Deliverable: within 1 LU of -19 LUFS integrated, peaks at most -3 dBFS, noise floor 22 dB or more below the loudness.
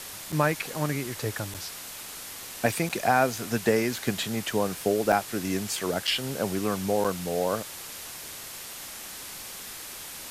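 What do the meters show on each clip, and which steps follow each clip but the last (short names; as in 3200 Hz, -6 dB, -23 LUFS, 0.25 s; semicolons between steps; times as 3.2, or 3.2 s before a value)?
dropouts 6; longest dropout 6.3 ms; noise floor -41 dBFS; noise floor target -51 dBFS; loudness -29.0 LUFS; peak -9.5 dBFS; loudness target -19.0 LUFS
-> interpolate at 0.32/1.54/2.89/5.12/6.07/7.04, 6.3 ms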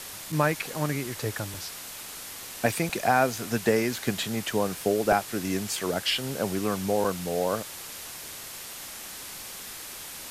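dropouts 0; noise floor -41 dBFS; noise floor target -51 dBFS
-> noise print and reduce 10 dB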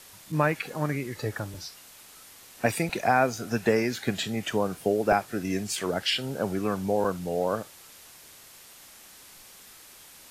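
noise floor -51 dBFS; loudness -28.0 LUFS; peak -10.0 dBFS; loudness target -19.0 LUFS
-> gain +9 dB; limiter -3 dBFS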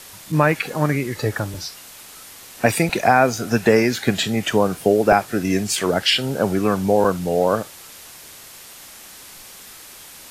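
loudness -19.5 LUFS; peak -3.0 dBFS; noise floor -42 dBFS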